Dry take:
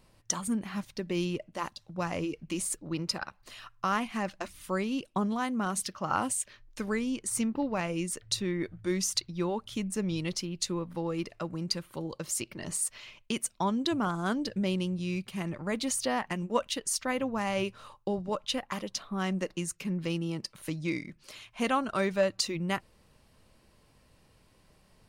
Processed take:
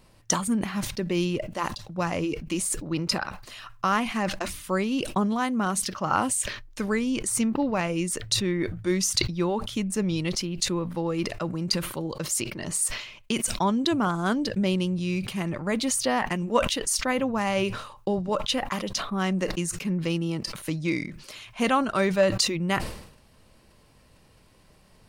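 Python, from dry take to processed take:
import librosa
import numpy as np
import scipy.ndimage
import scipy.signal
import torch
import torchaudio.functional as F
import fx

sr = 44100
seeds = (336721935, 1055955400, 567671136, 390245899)

y = fx.sustainer(x, sr, db_per_s=79.0)
y = F.gain(torch.from_numpy(y), 5.0).numpy()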